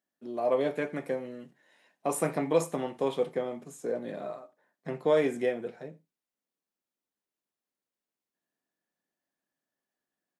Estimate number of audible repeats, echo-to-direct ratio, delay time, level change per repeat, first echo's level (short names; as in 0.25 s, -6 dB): 1, -23.5 dB, 88 ms, no steady repeat, -23.5 dB